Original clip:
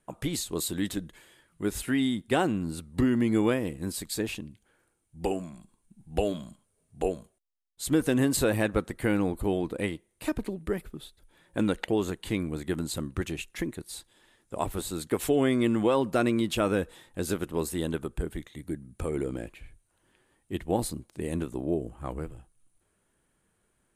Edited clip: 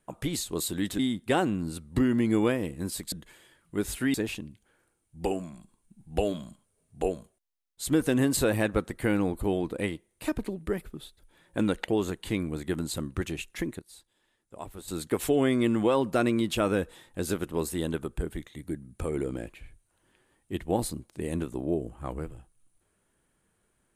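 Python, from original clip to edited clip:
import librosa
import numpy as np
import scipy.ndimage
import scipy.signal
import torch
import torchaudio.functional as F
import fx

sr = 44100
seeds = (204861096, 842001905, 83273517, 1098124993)

y = fx.edit(x, sr, fx.move(start_s=0.99, length_s=1.02, to_s=4.14),
    fx.clip_gain(start_s=13.79, length_s=1.09, db=-10.5), tone=tone)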